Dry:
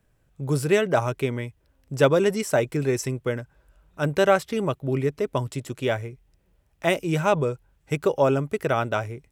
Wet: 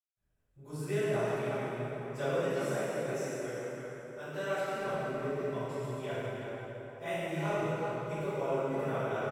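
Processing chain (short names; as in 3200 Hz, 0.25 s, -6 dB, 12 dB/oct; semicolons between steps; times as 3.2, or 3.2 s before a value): 2.18–4.66 low shelf 260 Hz -8.5 dB; speakerphone echo 0.33 s, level -7 dB; reverb RT60 4.0 s, pre-delay 0.164 s; gain +5.5 dB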